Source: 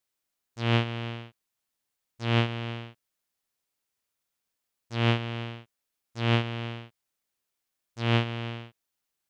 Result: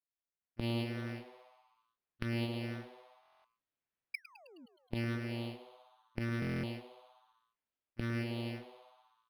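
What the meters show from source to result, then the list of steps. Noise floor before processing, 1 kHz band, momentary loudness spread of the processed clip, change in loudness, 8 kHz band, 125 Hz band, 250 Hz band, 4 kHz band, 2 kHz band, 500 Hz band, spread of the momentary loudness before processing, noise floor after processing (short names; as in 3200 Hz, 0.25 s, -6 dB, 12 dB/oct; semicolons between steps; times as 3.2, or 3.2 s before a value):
-84 dBFS, -14.5 dB, 20 LU, -10.5 dB, n/a, -10.5 dB, -5.5 dB, -13.5 dB, -10.0 dB, -9.0 dB, 16 LU, under -85 dBFS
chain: gate -37 dBFS, range -36 dB; comb 3.4 ms, depth 61%; AGC gain up to 11.5 dB; limiter -10 dBFS, peak gain reduction 8 dB; painted sound fall, 4.14–4.66, 220–2400 Hz -40 dBFS; flipped gate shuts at -37 dBFS, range -25 dB; phaser stages 6, 1.7 Hz, lowest notch 770–1600 Hz; frequency-shifting echo 0.105 s, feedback 63%, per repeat +130 Hz, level -15 dB; stuck buffer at 3.21/6.4, samples 1024, times 9; decimation joined by straight lines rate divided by 6×; gain +12.5 dB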